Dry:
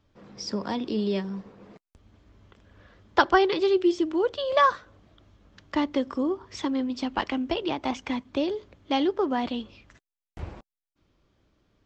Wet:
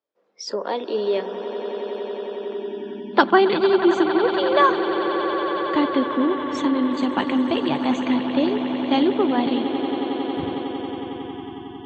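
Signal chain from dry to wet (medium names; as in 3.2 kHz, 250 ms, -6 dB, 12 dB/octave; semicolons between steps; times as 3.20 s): echo with a slow build-up 91 ms, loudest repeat 8, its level -13.5 dB; high-pass sweep 480 Hz -> 150 Hz, 2.35–3.74 s; spectral noise reduction 22 dB; trim +3 dB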